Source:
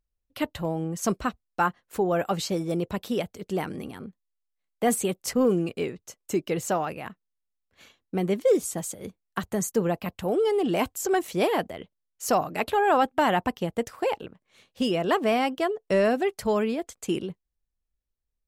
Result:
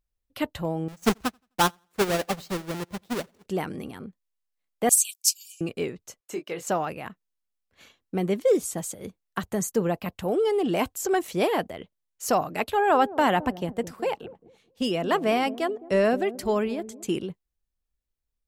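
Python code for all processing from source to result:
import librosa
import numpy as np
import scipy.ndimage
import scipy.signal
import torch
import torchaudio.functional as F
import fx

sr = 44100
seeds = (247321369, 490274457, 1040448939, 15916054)

y = fx.chain(x, sr, fx.halfwave_hold(),
    fx.echo_feedback(ms=86, feedback_pct=35, wet_db=-14.5),
    fx.upward_expand(threshold_db=-33.0, expansion=2.5), at=(0.88, 3.46))
y = fx.chain(y, sr, fx.brickwall_highpass(low_hz=2300.0),
    fx.high_shelf_res(hz=4100.0, db=9.5, q=1.5), at=(4.89, 5.61))
y = fx.chain(y, sr, fx.highpass(hz=780.0, slope=6),
    fx.high_shelf(hz=4100.0, db=-7.5),
    fx.doubler(ms=23.0, db=-7), at=(6.2, 6.67))
y = fx.chain(y, sr, fx.echo_wet_lowpass(ms=216, feedback_pct=34, hz=450.0, wet_db=-10.5),
    fx.band_widen(depth_pct=40), at=(12.64, 17.07))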